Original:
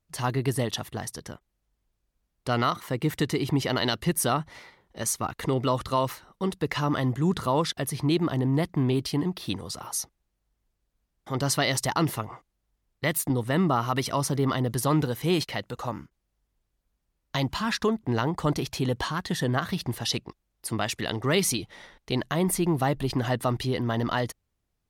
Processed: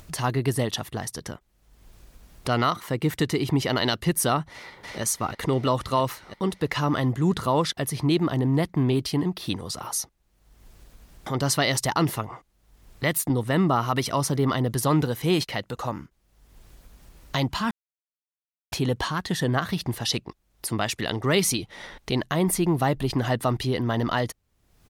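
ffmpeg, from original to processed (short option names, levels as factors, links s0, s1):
-filter_complex "[0:a]asplit=2[s0][s1];[s1]afade=t=in:st=4.5:d=0.01,afade=t=out:st=5.01:d=0.01,aecho=0:1:330|660|990|1320|1650|1980|2310|2640|2970|3300|3630|3960:0.530884|0.424708|0.339766|0.271813|0.21745|0.17396|0.139168|0.111335|0.0890676|0.0712541|0.0570033|0.0456026[s2];[s0][s2]amix=inputs=2:normalize=0,asplit=3[s3][s4][s5];[s3]atrim=end=17.71,asetpts=PTS-STARTPTS,afade=t=out:st=17.706:d=0.004:c=hsin[s6];[s4]atrim=start=17.71:end=18.72,asetpts=PTS-STARTPTS,volume=0[s7];[s5]atrim=start=18.72,asetpts=PTS-STARTPTS,afade=t=in:d=0.004:c=hsin[s8];[s6][s7][s8]concat=n=3:v=0:a=1,acompressor=mode=upward:threshold=0.0316:ratio=2.5,volume=1.26"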